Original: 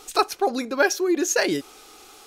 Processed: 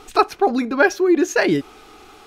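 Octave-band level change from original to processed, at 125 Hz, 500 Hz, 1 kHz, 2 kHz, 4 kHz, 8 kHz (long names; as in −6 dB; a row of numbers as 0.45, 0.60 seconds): +10.0, +5.0, +5.0, +4.5, −2.0, −6.0 decibels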